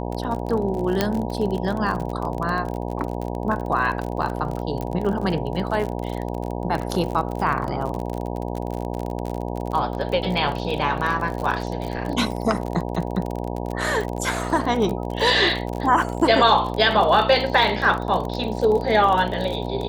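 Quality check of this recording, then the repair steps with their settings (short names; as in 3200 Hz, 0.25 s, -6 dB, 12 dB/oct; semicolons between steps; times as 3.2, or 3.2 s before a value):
buzz 60 Hz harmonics 16 -28 dBFS
crackle 40/s -26 dBFS
1.01 pop -5 dBFS
4.81 pop -17 dBFS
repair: de-click; de-hum 60 Hz, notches 16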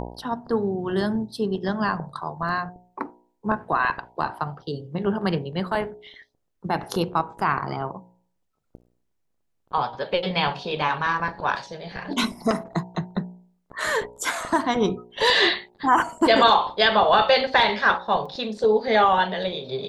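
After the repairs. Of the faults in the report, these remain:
none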